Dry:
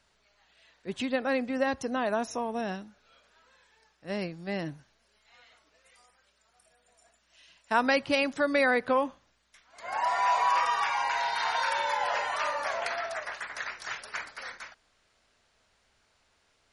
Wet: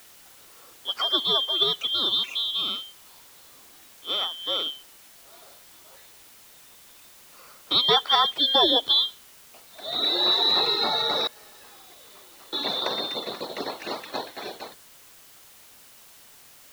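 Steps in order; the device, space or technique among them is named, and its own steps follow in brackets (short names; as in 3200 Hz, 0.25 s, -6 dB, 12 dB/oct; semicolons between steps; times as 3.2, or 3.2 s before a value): 11.27–12.53 passive tone stack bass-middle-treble 10-0-1; split-band scrambled radio (four-band scrambler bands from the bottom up 2413; BPF 370–3000 Hz; white noise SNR 23 dB); gain +9 dB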